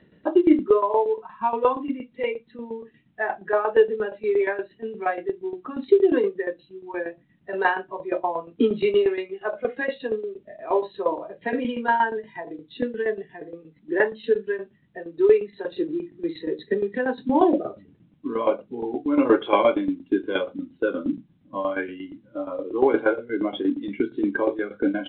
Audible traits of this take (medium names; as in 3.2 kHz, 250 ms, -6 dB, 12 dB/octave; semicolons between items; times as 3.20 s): tremolo saw down 8.5 Hz, depth 75%; µ-law